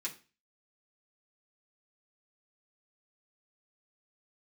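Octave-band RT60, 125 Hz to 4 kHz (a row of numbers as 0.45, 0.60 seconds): 0.45, 0.35, 0.35, 0.35, 0.35, 0.35 seconds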